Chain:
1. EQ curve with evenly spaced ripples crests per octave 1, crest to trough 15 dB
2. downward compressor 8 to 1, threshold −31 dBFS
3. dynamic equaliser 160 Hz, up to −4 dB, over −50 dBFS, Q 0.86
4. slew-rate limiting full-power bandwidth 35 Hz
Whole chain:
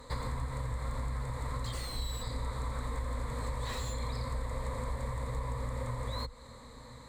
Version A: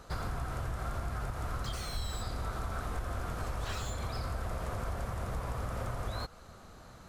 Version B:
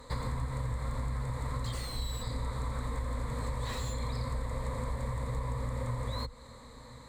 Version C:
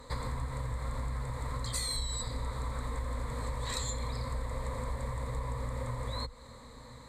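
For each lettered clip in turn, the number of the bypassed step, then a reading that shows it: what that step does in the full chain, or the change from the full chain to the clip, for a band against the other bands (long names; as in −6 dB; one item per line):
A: 1, 2 kHz band +2.5 dB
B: 3, 250 Hz band +2.5 dB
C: 4, distortion level −13 dB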